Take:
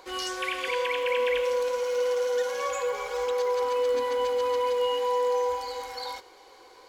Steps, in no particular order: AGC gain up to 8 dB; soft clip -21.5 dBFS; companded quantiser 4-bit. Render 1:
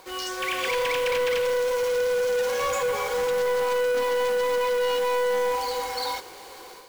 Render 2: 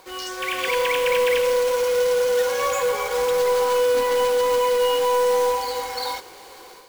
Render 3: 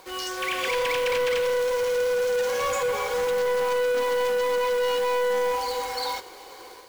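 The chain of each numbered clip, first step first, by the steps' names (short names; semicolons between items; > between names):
companded quantiser > AGC > soft clip; companded quantiser > soft clip > AGC; AGC > companded quantiser > soft clip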